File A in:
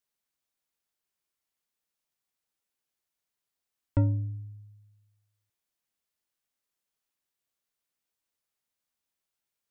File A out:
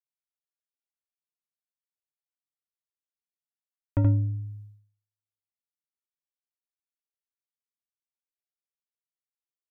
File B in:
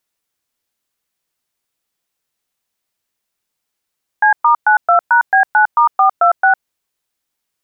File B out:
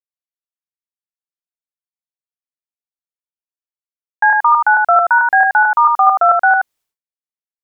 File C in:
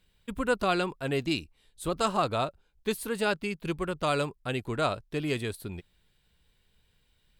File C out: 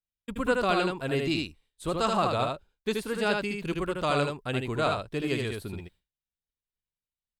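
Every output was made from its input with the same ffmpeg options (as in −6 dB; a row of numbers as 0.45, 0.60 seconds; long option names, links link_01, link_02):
-filter_complex "[0:a]agate=range=-33dB:threshold=-47dB:ratio=3:detection=peak,acrossover=split=7600[link_01][link_02];[link_02]acompressor=threshold=-52dB:ratio=4:attack=1:release=60[link_03];[link_01][link_03]amix=inputs=2:normalize=0,asplit=2[link_04][link_05];[link_05]aecho=0:1:77:0.668[link_06];[link_04][link_06]amix=inputs=2:normalize=0"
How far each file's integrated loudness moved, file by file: +3.5, +1.5, +1.5 LU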